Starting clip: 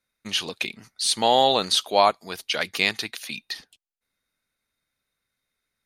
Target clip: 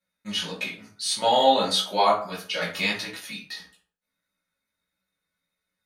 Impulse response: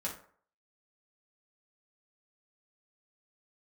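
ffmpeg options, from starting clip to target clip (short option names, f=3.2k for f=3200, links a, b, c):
-filter_complex "[0:a]bandreject=f=50:t=h:w=6,bandreject=f=100:t=h:w=6[a];[1:a]atrim=start_sample=2205,afade=t=out:st=0.42:d=0.01,atrim=end_sample=18963[b];[a][b]afir=irnorm=-1:irlink=0,flanger=delay=16:depth=3.1:speed=1.6"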